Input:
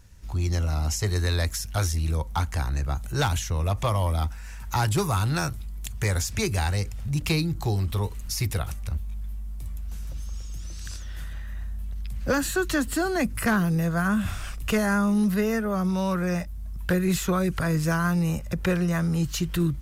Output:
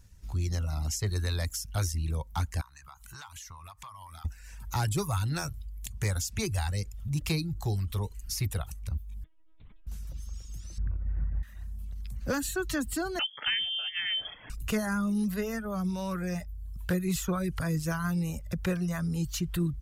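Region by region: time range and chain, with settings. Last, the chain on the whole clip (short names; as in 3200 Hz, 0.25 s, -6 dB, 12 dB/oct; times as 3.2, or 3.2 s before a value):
2.61–4.25 resonant low shelf 720 Hz -12 dB, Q 3 + compressor 5:1, threshold -37 dBFS
9.24–9.87 HPF 230 Hz 6 dB/oct + LPC vocoder at 8 kHz pitch kept
10.78–11.43 LPF 1200 Hz + low shelf 460 Hz +10 dB + careless resampling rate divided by 8×, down none, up filtered
13.19–14.5 HPF 120 Hz + inverted band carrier 3300 Hz
whole clip: reverb removal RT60 0.74 s; tone controls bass +4 dB, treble +4 dB; gain -7 dB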